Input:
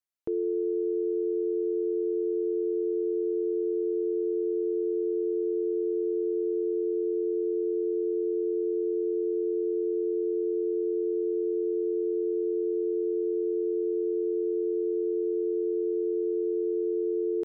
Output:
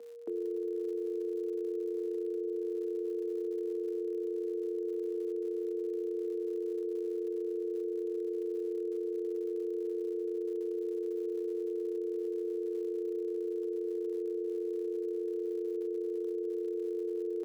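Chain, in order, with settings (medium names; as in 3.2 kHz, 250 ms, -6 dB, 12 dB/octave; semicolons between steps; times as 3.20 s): crackle 150 per s -41 dBFS; whistle 470 Hz -38 dBFS; rippled Chebyshev high-pass 200 Hz, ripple 3 dB; trim -4.5 dB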